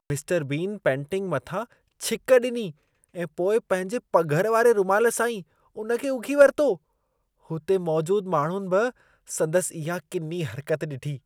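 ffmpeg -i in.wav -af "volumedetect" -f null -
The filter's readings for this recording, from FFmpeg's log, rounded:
mean_volume: -24.8 dB
max_volume: -4.8 dB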